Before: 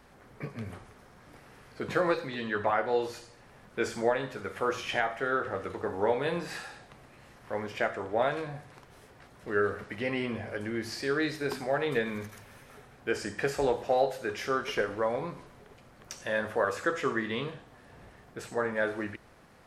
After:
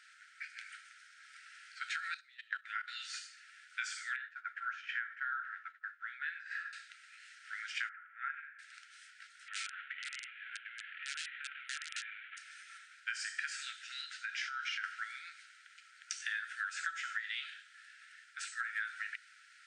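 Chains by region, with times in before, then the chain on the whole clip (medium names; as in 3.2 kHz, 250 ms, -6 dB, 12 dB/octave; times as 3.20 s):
1.96–2.88 s: high-pass 420 Hz + gate -36 dBFS, range -12 dB + level held to a coarse grid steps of 16 dB
4.16–6.73 s: band-pass filter 1.6 kHz, Q 3.3 + expander -46 dBFS
7.89–8.59 s: Gaussian low-pass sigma 5.8 samples + tilt EQ +4.5 dB/octave
9.48–12.37 s: CVSD coder 16 kbps + integer overflow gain 23 dB + compression 10:1, threshold -38 dBFS
14.10–14.84 s: distance through air 77 m + compression 5:1, threshold -32 dBFS
whole clip: FFT band-pass 1.3–9.5 kHz; compression 10:1, threshold -38 dBFS; trim +3.5 dB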